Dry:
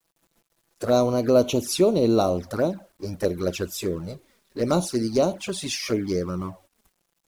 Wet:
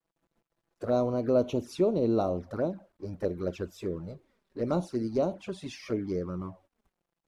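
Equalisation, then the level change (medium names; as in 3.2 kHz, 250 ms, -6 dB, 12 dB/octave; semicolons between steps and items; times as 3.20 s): low-pass 1.3 kHz 6 dB/octave; -6.0 dB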